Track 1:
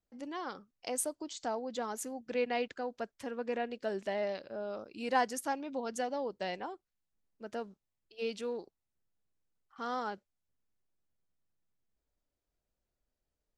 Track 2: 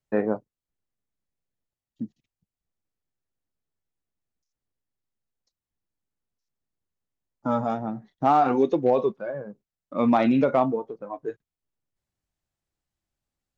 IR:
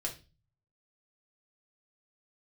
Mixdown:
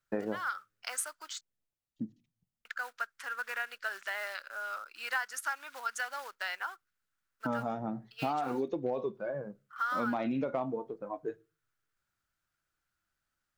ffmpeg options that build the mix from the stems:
-filter_complex "[0:a]acrusher=bits=5:mode=log:mix=0:aa=0.000001,highpass=frequency=1400:width_type=q:width=5.4,volume=2.5dB,asplit=3[link_01][link_02][link_03];[link_01]atrim=end=1.41,asetpts=PTS-STARTPTS,afade=type=out:start_time=1.406:duration=0.004:curve=hsin[link_04];[link_02]atrim=start=1.41:end=2.65,asetpts=PTS-STARTPTS,volume=0[link_05];[link_03]atrim=start=2.65,asetpts=PTS-STARTPTS,afade=type=in:duration=0.004:curve=hsin[link_06];[link_04][link_05][link_06]concat=n=3:v=0:a=1[link_07];[1:a]volume=-5dB,asplit=2[link_08][link_09];[link_09]volume=-16.5dB[link_10];[2:a]atrim=start_sample=2205[link_11];[link_10][link_11]afir=irnorm=-1:irlink=0[link_12];[link_07][link_08][link_12]amix=inputs=3:normalize=0,acompressor=threshold=-30dB:ratio=5"

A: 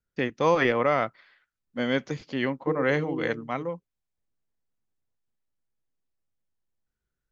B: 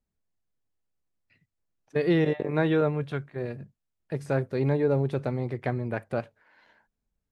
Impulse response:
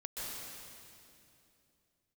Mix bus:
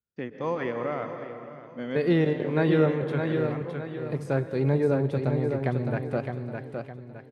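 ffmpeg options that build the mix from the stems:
-filter_complex "[0:a]highshelf=frequency=2500:gain=-10.5,volume=-10dB,asplit=3[link_01][link_02][link_03];[link_02]volume=-5dB[link_04];[link_03]volume=-12.5dB[link_05];[1:a]agate=range=-33dB:threshold=-56dB:ratio=3:detection=peak,volume=-2dB,asplit=4[link_06][link_07][link_08][link_09];[link_07]volume=-13.5dB[link_10];[link_08]volume=-4.5dB[link_11];[link_09]apad=whole_len=322506[link_12];[link_01][link_12]sidechaincompress=threshold=-30dB:ratio=8:attack=16:release=390[link_13];[2:a]atrim=start_sample=2205[link_14];[link_04][link_10]amix=inputs=2:normalize=0[link_15];[link_15][link_14]afir=irnorm=-1:irlink=0[link_16];[link_05][link_11]amix=inputs=2:normalize=0,aecho=0:1:612|1224|1836|2448|3060:1|0.38|0.144|0.0549|0.0209[link_17];[link_13][link_06][link_16][link_17]amix=inputs=4:normalize=0,highpass=81,lowshelf=frequency=340:gain=3"

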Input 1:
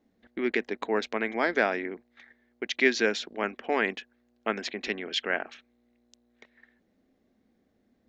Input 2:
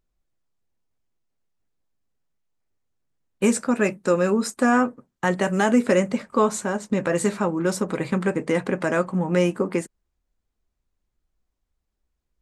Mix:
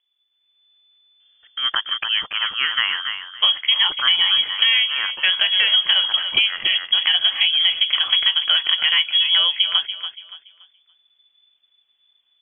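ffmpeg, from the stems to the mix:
ffmpeg -i stem1.wav -i stem2.wav -filter_complex "[0:a]adelay=1200,volume=-4dB,asplit=2[link_01][link_02];[link_02]volume=-6dB[link_03];[1:a]volume=2.5dB,asplit=2[link_04][link_05];[link_05]volume=-14dB[link_06];[link_03][link_06]amix=inputs=2:normalize=0,aecho=0:1:285|570|855|1140:1|0.25|0.0625|0.0156[link_07];[link_01][link_04][link_07]amix=inputs=3:normalize=0,dynaudnorm=framelen=130:gausssize=7:maxgain=10dB,lowpass=frequency=3000:width_type=q:width=0.5098,lowpass=frequency=3000:width_type=q:width=0.6013,lowpass=frequency=3000:width_type=q:width=0.9,lowpass=frequency=3000:width_type=q:width=2.563,afreqshift=-3500,acompressor=threshold=-13dB:ratio=6" out.wav

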